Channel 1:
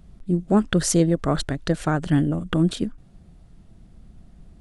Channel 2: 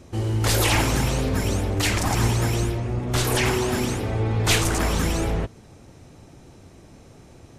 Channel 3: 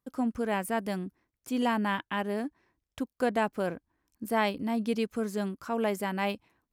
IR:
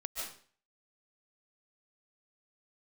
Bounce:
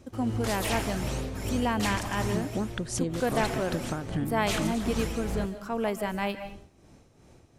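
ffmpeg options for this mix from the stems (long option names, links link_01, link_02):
-filter_complex "[0:a]adelay=2050,volume=-1.5dB[link_01];[1:a]volume=-7.5dB,asplit=2[link_02][link_03];[link_03]volume=-15.5dB[link_04];[2:a]volume=-2.5dB,asplit=2[link_05][link_06];[link_06]volume=-7.5dB[link_07];[link_01][link_02]amix=inputs=2:normalize=0,tremolo=f=2.6:d=0.64,acompressor=threshold=-28dB:ratio=6,volume=0dB[link_08];[3:a]atrim=start_sample=2205[link_09];[link_04][link_07]amix=inputs=2:normalize=0[link_10];[link_10][link_09]afir=irnorm=-1:irlink=0[link_11];[link_05][link_08][link_11]amix=inputs=3:normalize=0"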